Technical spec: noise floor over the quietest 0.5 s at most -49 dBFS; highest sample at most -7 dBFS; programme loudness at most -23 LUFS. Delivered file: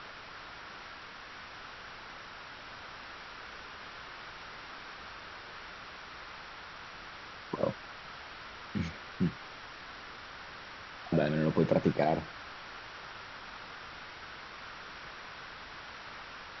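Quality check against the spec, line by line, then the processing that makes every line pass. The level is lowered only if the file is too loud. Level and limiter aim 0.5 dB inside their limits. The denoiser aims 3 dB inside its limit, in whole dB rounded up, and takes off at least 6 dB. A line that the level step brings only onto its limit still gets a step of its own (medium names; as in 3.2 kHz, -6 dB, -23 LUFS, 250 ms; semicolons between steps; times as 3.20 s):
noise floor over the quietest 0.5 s -47 dBFS: fail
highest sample -13.0 dBFS: pass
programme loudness -39.0 LUFS: pass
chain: noise reduction 6 dB, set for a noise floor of -47 dBFS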